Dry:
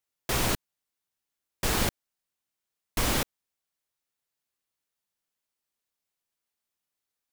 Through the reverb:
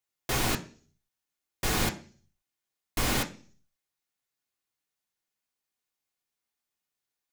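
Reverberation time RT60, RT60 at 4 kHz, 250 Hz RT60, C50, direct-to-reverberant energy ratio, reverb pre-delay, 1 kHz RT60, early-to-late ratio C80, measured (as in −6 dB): 0.45 s, 0.55 s, 0.55 s, 15.5 dB, 3.0 dB, 3 ms, 0.40 s, 20.0 dB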